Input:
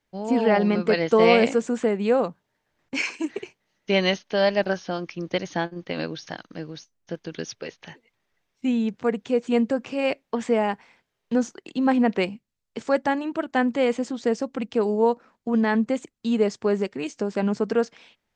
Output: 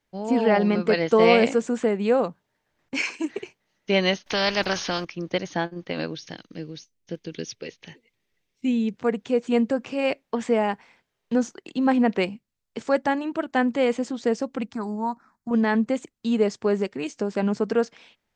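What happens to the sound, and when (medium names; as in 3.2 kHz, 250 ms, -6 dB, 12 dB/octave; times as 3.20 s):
4.26–5.05 s: spectrum-flattening compressor 2:1
6.15–8.97 s: high-order bell 1 kHz -8 dB
14.72–15.51 s: static phaser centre 1.2 kHz, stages 4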